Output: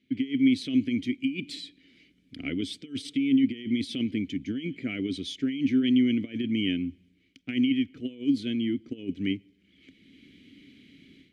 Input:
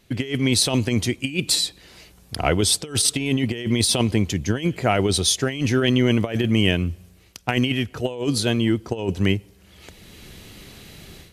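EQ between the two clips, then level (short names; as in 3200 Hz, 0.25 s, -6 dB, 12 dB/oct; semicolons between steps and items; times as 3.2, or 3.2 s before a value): vowel filter i; low shelf 270 Hz +6 dB; 0.0 dB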